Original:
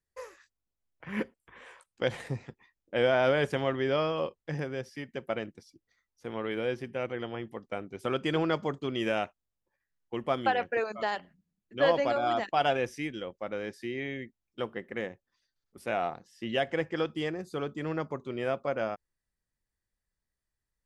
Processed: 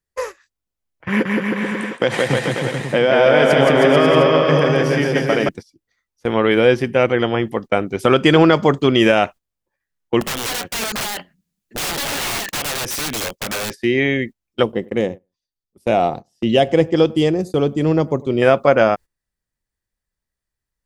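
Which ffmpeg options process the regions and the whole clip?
-filter_complex "[0:a]asettb=1/sr,asplit=3[a][b][c];[a]atrim=end=1.084[d];[b]atrim=start=1.08:end=5.49,asetpts=PTS-STARTPTS,afade=t=in:d=0.004:c=qsin,afade=t=out:st=4.406:d=0.004:c=qsin,acompressor=threshold=-31dB:ratio=4:attack=3.2:release=140:knee=1:detection=peak,highpass=f=130:w=0.5412,highpass=f=130:w=1.3066,aecho=1:1:170|314.5|437.3|541.7|630.5|705.9:0.794|0.631|0.501|0.398|0.316|0.251,atrim=end_sample=194481[e];[c]atrim=start=5.486[f];[d][e]acrossfade=d=0.004:c1=hsin:c2=qsin[g];[g][f]acrossfade=d=0.004:c1=qsin:c2=hsin,asettb=1/sr,asplit=3[h][i][j];[h]atrim=end=10.214[k];[i]atrim=start=10.21:end=13.73,asetpts=PTS-STARTPTS,afade=t=in:d=0.004:c=qsin,afade=t=out:st=3.516:d=0.004:c=qsin,highshelf=f=2.3k:g=10,acompressor=threshold=-34dB:ratio=8:attack=3.2:release=140:knee=1:detection=peak,aeval=exprs='(mod(70.8*val(0)+1,2)-1)/70.8':c=same[l];[j]atrim=start=13.726[m];[k][l]acrossfade=d=0.004:c1=hsin:c2=qsin[n];[n][m]acrossfade=d=0.004:c1=qsin:c2=hsin,asettb=1/sr,asplit=3[o][p][q];[o]atrim=end=14.634[r];[p]atrim=start=14.63:end=18.42,asetpts=PTS-STARTPTS,afade=t=in:d=0.004:c=qsin,afade=t=out:st=3.786:d=0.004:c=qsin,agate=range=-8dB:threshold=-50dB:ratio=16:release=100:detection=peak,equalizer=f=1.6k:w=0.92:g=-14,asplit=2[s][t];[t]adelay=99,lowpass=f=1.2k:p=1,volume=-21.5dB,asplit=2[u][v];[v]adelay=99,lowpass=f=1.2k:p=1,volume=0.19[w];[s][u][w]amix=inputs=3:normalize=0,atrim=end_sample=167139[x];[q]atrim=start=18.416[y];[r][x]acrossfade=d=0.004:c1=hsin:c2=qsin[z];[z][y]acrossfade=d=0.004:c1=qsin:c2=hsin,agate=range=-15dB:threshold=-47dB:ratio=16:detection=peak,alimiter=level_in=19.5dB:limit=-1dB:release=50:level=0:latency=1,volume=-1dB"

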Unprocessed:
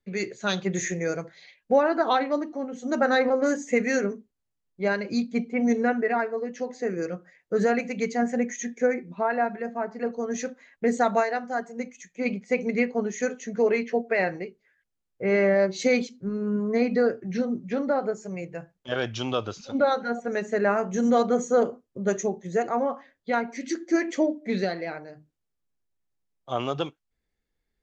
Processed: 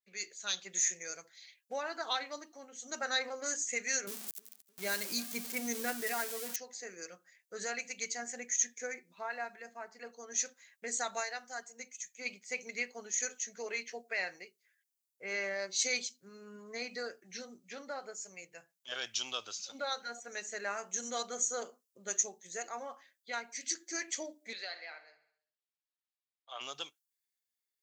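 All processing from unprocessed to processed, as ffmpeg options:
-filter_complex "[0:a]asettb=1/sr,asplit=3[a][b][c];[a]atrim=end=4.074[d];[b]atrim=start=4.07:end=6.56,asetpts=PTS-STARTPTS,afade=t=in:d=0.004:c=qsin,afade=t=out:st=2.486:d=0.004:c=qsin,aeval=exprs='val(0)+0.5*0.0211*sgn(val(0))':c=same,lowshelf=f=300:g=11.5,aecho=1:1:308|616|924:0.0708|0.0347|0.017,atrim=end_sample=109809[e];[c]atrim=start=6.556[f];[d][e]acrossfade=d=0.004:c1=hsin:c2=qsin[g];[g][f]acrossfade=d=0.004:c1=qsin:c2=hsin,asettb=1/sr,asplit=3[h][i][j];[h]atrim=end=24.534[k];[i]atrim=start=24.53:end=26.61,asetpts=PTS-STARTPTS,afade=t=in:d=0.004:c=qsin,afade=t=out:st=2.076:d=0.004:c=qsin,acrossover=split=500 4900:gain=0.126 1 0.0708[l][m][n];[l][m][n]amix=inputs=3:normalize=0,bandreject=f=5.9k:w=6,aecho=1:1:67|134|201|268|335|402:0.188|0.109|0.0634|0.0368|0.0213|0.0124,atrim=end_sample=91728[o];[j]atrim=start=26.606[p];[k][o]acrossfade=d=0.004:c1=hsin:c2=qsin[q];[q][p]acrossfade=d=0.004:c1=qsin:c2=hsin,aderivative,dynaudnorm=f=260:g=11:m=3.5dB,adynamicequalizer=threshold=0.00316:dfrequency=4100:dqfactor=0.7:tfrequency=4100:tqfactor=0.7:attack=5:release=100:ratio=0.375:range=2.5:mode=boostabove:tftype=highshelf"

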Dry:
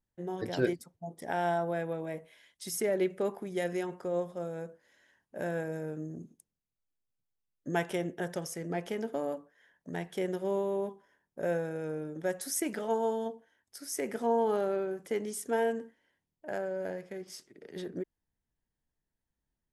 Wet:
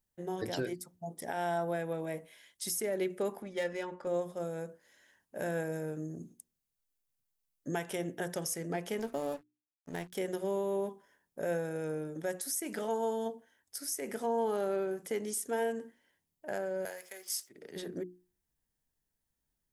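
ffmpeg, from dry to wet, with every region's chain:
-filter_complex "[0:a]asettb=1/sr,asplit=3[a][b][c];[a]atrim=end=3.424[d];[b]atrim=start=3.42:end=4.07,asetpts=PTS-STARTPTS,afade=t=in:d=0.004:c=qsin,afade=t=out:st=0.646:d=0.004:c=qsin,equalizer=f=300:t=o:w=0.76:g=-8,adynamicsmooth=sensitivity=7.5:basefreq=3.3k,aecho=1:1:3.5:0.6,atrim=end_sample=28665[e];[c]atrim=start=4.066[f];[d][e]acrossfade=d=0.004:c1=hsin:c2=qsin[g];[g][f]acrossfade=d=0.004:c1=qsin:c2=hsin,asettb=1/sr,asplit=3[h][i][j];[h]atrim=end=8.994[k];[i]atrim=start=8.99:end=10.15,asetpts=PTS-STARTPTS,afade=t=in:d=0.004:c=qsin,afade=t=out:st=1.156:d=0.004:c=qsin,highpass=46,aeval=exprs='val(0)+0.000398*(sin(2*PI*50*n/s)+sin(2*PI*2*50*n/s)/2+sin(2*PI*3*50*n/s)/3+sin(2*PI*4*50*n/s)/4+sin(2*PI*5*50*n/s)/5)':c=same,aeval=exprs='sgn(val(0))*max(abs(val(0))-0.00335,0)':c=same[l];[j]atrim=start=10.146[m];[k][l]acrossfade=d=0.004:c1=hsin:c2=qsin[n];[n][m]acrossfade=d=0.004:c1=qsin:c2=hsin,asettb=1/sr,asplit=3[o][p][q];[o]atrim=end=16.854[r];[p]atrim=start=16.85:end=17.49,asetpts=PTS-STARTPTS,afade=t=in:d=0.004:c=qsin,afade=t=out:st=0.636:d=0.004:c=qsin,highpass=770,aemphasis=mode=production:type=50kf[s];[q]atrim=start=17.486[t];[r][s]acrossfade=d=0.004:c1=hsin:c2=qsin[u];[u][t]acrossfade=d=0.004:c1=qsin:c2=hsin,highshelf=f=6k:g=10,bandreject=f=60:t=h:w=6,bandreject=f=120:t=h:w=6,bandreject=f=180:t=h:w=6,bandreject=f=240:t=h:w=6,bandreject=f=300:t=h:w=6,bandreject=f=360:t=h:w=6,alimiter=level_in=0.5dB:limit=-24dB:level=0:latency=1:release=224,volume=-0.5dB"

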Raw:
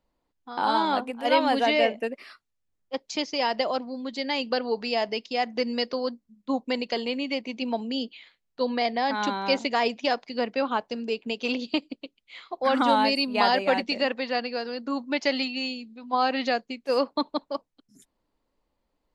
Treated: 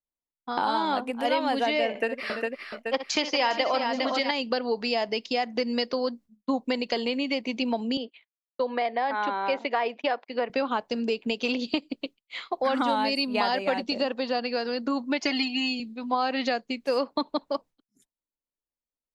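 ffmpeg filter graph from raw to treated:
-filter_complex "[0:a]asettb=1/sr,asplit=3[a][b][c];[a]atrim=end=1.894[d];[b]atrim=start=1.89:end=4.31,asetpts=PTS-STARTPTS,afade=t=in:d=0.004:c=qsin,afade=t=out:st=2.416:d=0.004:c=qsin,equalizer=f=1.6k:t=o:w=2.8:g=8.5,aecho=1:1:62|337|406|831:0.266|0.112|0.398|0.188,atrim=end_sample=106722[e];[c]atrim=start=4.306[f];[d][e]acrossfade=d=0.004:c1=hsin:c2=qsin[g];[g][f]acrossfade=d=0.004:c1=qsin:c2=hsin,asettb=1/sr,asplit=3[h][i][j];[h]atrim=end=7.974[k];[i]atrim=start=7.97:end=10.5,asetpts=PTS-STARTPTS,afade=t=in:d=0.004:c=qsin,afade=t=out:st=2.526:d=0.004:c=qsin,highpass=400,lowpass=2.3k,agate=range=-27dB:threshold=-52dB:ratio=16:release=100:detection=peak[l];[j]atrim=start=10.496[m];[k][l]acrossfade=d=0.004:c1=hsin:c2=qsin[n];[n][m]acrossfade=d=0.004:c1=qsin:c2=hsin,asettb=1/sr,asplit=3[o][p][q];[o]atrim=end=13.784[r];[p]atrim=start=13.78:end=14.43,asetpts=PTS-STARTPTS,afade=t=in:d=0.004:c=qsin,afade=t=out:st=0.646:d=0.004:c=qsin,equalizer=f=2.1k:w=2.5:g=-10.5,acrossover=split=6500[s][t];[t]acompressor=threshold=-56dB:ratio=4:attack=1:release=60[u];[s][u]amix=inputs=2:normalize=0[v];[q]atrim=start=14.426[w];[r][v]acrossfade=d=0.004:c1=hsin:c2=qsin[x];[x][w]acrossfade=d=0.004:c1=qsin:c2=hsin,asettb=1/sr,asplit=3[y][z][aa];[y]atrim=end=15.224[ab];[z]atrim=start=15.22:end=15.8,asetpts=PTS-STARTPTS,afade=t=in:d=0.004:c=qsin,afade=t=out:st=0.576:d=0.004:c=qsin,equalizer=f=3.9k:w=5.9:g=-6.5,aecho=1:1:2.8:0.97,atrim=end_sample=25578[ac];[aa]atrim=start=15.796[ad];[ab][ac]acrossfade=d=0.004:c1=hsin:c2=qsin[ae];[ae][ad]acrossfade=d=0.004:c1=qsin:c2=hsin,agate=range=-33dB:threshold=-43dB:ratio=3:detection=peak,acompressor=threshold=-34dB:ratio=3,volume=8dB"

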